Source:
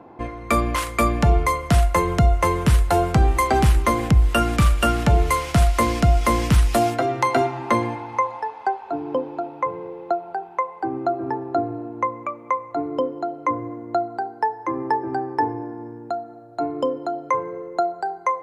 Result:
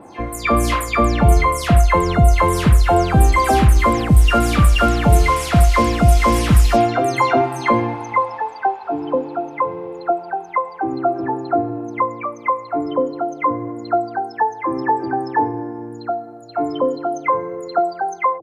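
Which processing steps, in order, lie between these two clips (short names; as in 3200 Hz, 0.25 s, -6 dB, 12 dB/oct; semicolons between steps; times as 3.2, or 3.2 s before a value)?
spectral delay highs early, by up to 0.178 s; gain +4.5 dB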